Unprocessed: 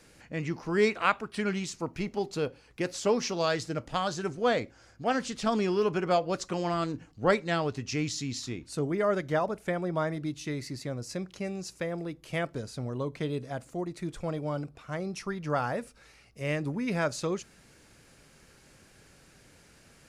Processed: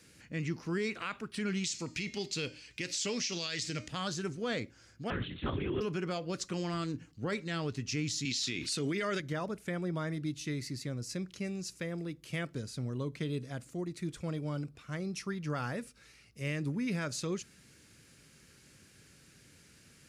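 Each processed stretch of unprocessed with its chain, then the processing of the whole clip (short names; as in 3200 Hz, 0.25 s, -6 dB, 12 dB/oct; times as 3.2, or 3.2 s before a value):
1.64–3.88 band shelf 3900 Hz +11 dB 2.4 oct + de-hum 306.9 Hz, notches 33 + compressor 2:1, threshold -29 dBFS
5.1–5.81 transient shaper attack +6 dB, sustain +11 dB + LPC vocoder at 8 kHz whisper + upward expander, over -33 dBFS
8.25–9.2 weighting filter D + fast leveller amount 50%
whole clip: HPF 70 Hz; bell 750 Hz -11.5 dB 1.5 oct; limiter -25 dBFS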